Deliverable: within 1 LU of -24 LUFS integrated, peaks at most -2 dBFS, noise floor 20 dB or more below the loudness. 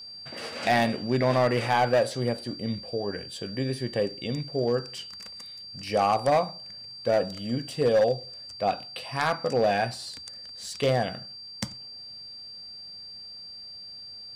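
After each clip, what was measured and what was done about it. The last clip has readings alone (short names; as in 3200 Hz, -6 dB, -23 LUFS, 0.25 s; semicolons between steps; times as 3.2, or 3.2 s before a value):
clipped 0.6%; flat tops at -16.0 dBFS; steady tone 4700 Hz; tone level -40 dBFS; loudness -27.5 LUFS; peak -16.0 dBFS; loudness target -24.0 LUFS
-> clip repair -16 dBFS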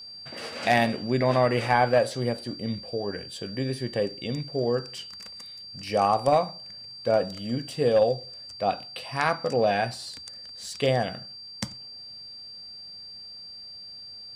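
clipped 0.0%; steady tone 4700 Hz; tone level -40 dBFS
-> notch 4700 Hz, Q 30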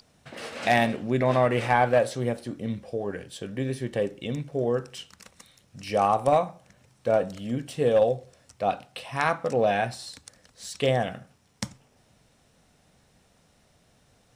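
steady tone none; loudness -26.5 LUFS; peak -7.0 dBFS; loudness target -24.0 LUFS
-> gain +2.5 dB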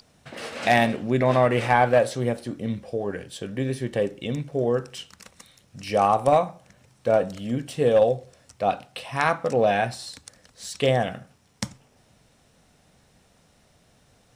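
loudness -24.0 LUFS; peak -4.5 dBFS; noise floor -61 dBFS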